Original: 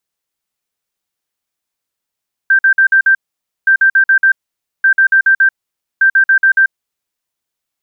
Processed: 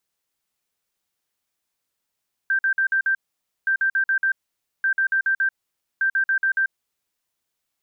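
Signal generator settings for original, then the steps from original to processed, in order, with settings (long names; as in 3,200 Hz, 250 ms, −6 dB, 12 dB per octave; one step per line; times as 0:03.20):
beeps in groups sine 1,570 Hz, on 0.09 s, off 0.05 s, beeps 5, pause 0.52 s, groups 4, −5.5 dBFS
brickwall limiter −17 dBFS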